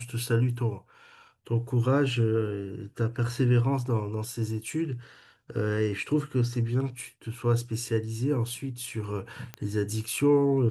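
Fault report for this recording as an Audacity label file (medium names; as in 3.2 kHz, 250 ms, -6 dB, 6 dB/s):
9.540000	9.540000	pop -20 dBFS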